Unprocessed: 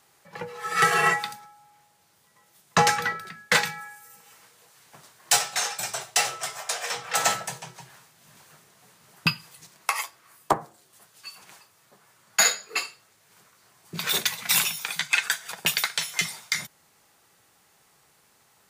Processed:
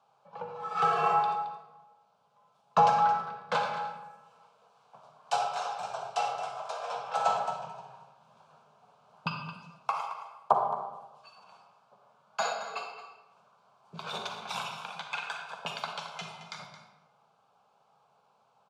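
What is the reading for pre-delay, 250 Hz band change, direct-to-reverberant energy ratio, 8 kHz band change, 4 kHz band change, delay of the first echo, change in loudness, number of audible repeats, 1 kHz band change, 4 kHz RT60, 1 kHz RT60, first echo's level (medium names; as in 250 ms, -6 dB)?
39 ms, -8.0 dB, 2.5 dB, -23.0 dB, -14.0 dB, 220 ms, -7.0 dB, 1, +1.0 dB, 0.70 s, 1.1 s, -12.0 dB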